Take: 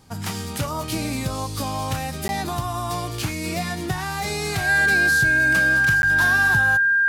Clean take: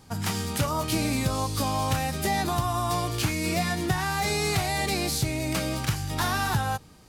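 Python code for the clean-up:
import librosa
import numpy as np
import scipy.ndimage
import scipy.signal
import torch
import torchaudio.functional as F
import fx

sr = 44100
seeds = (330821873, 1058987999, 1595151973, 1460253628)

y = fx.notch(x, sr, hz=1600.0, q=30.0)
y = fx.fix_interpolate(y, sr, at_s=(2.28, 6.02), length_ms=11.0)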